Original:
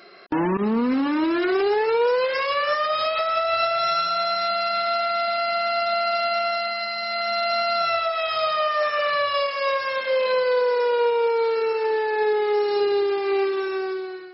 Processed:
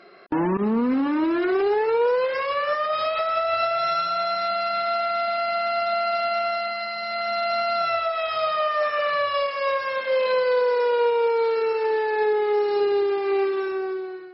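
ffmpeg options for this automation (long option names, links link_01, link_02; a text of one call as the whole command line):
ffmpeg -i in.wav -af "asetnsamples=nb_out_samples=441:pad=0,asendcmd='2.93 lowpass f 2700;10.12 lowpass f 4600;12.26 lowpass f 2500;13.72 lowpass f 1400',lowpass=frequency=1800:poles=1" out.wav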